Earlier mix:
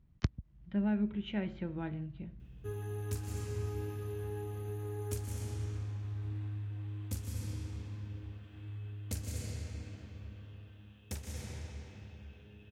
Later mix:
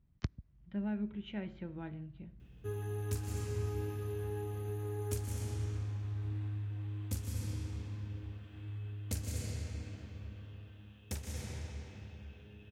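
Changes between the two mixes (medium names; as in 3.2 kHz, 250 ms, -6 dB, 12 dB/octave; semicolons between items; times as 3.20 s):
speech -5.5 dB; reverb: on, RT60 1.5 s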